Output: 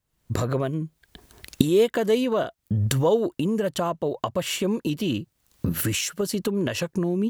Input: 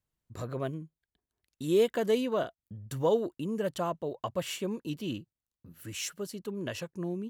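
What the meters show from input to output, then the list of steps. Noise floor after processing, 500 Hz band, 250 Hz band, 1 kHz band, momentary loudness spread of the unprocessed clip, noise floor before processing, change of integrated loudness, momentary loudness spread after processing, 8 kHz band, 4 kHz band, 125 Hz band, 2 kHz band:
-73 dBFS, +6.5 dB, +9.5 dB, +6.5 dB, 15 LU, under -85 dBFS, +7.5 dB, 8 LU, +10.5 dB, +9.5 dB, +12.5 dB, +9.0 dB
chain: recorder AGC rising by 51 dB/s; trim +5.5 dB

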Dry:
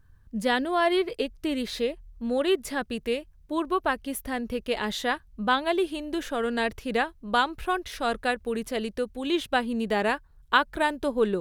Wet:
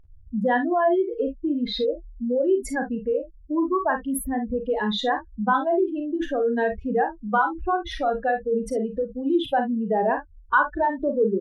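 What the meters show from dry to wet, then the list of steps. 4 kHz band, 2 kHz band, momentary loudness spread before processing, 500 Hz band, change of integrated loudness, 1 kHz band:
-3.5 dB, 0.0 dB, 7 LU, +4.0 dB, +3.0 dB, +4.0 dB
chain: spectral contrast enhancement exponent 2.7; in parallel at +0.5 dB: compression, threshold -32 dBFS, peak gain reduction 15.5 dB; on the sum: early reflections 37 ms -8.5 dB, 52 ms -9 dB, 67 ms -17 dB; tape noise reduction on one side only decoder only

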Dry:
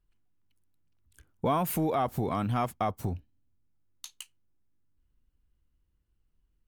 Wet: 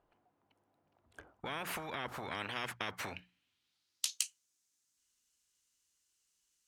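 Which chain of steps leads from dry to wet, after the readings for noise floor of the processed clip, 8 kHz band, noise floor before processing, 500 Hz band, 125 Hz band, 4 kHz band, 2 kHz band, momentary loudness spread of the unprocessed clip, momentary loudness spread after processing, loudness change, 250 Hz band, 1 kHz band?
-82 dBFS, +4.5 dB, -74 dBFS, -14.0 dB, -19.0 dB, +5.0 dB, +4.5 dB, 20 LU, 12 LU, -9.5 dB, -17.0 dB, -12.0 dB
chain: hum notches 60/120/180 Hz; band-pass sweep 700 Hz -> 6.7 kHz, 2.03–4.29 s; spectrum-flattening compressor 10:1; trim +7 dB

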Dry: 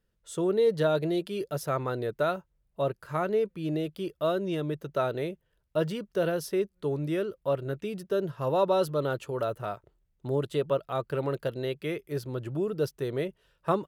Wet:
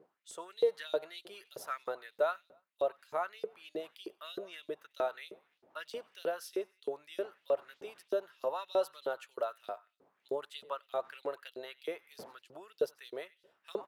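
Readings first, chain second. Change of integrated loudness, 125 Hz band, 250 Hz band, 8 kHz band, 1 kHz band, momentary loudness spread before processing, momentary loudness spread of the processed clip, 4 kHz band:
-8.5 dB, under -30 dB, -18.0 dB, -8.0 dB, -7.5 dB, 9 LU, 15 LU, -5.5 dB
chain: wind noise 180 Hz -41 dBFS; feedback delay 93 ms, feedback 47%, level -22 dB; LFO high-pass saw up 3.2 Hz 410–5000 Hz; trim -8.5 dB

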